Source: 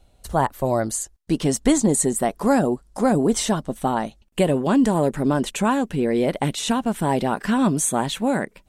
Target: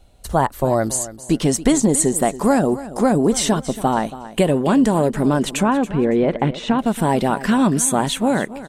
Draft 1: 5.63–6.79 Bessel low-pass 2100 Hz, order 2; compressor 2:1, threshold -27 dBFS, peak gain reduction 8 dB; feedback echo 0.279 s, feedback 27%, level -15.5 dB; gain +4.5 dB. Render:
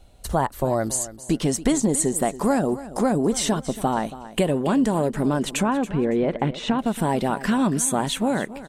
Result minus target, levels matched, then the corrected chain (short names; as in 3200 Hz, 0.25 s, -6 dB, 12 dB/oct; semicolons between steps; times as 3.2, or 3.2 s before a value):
compressor: peak gain reduction +5 dB
5.63–6.79 Bessel low-pass 2100 Hz, order 2; compressor 2:1, threshold -17 dBFS, peak gain reduction 3 dB; feedback echo 0.279 s, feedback 27%, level -15.5 dB; gain +4.5 dB